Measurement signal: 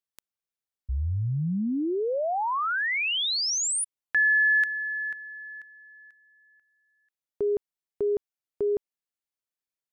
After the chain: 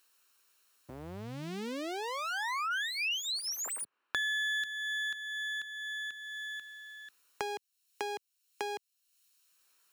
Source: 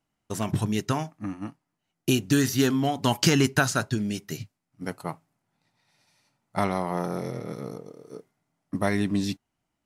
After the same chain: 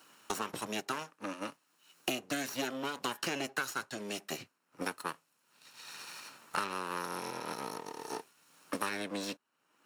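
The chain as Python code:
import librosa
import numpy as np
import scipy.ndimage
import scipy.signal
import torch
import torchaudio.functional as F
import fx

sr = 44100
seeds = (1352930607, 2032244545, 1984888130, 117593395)

y = fx.lower_of_two(x, sr, delay_ms=0.73)
y = scipy.signal.sosfilt(scipy.signal.butter(2, 460.0, 'highpass', fs=sr, output='sos'), y)
y = fx.band_squash(y, sr, depth_pct=100)
y = F.gain(torch.from_numpy(y), -5.5).numpy()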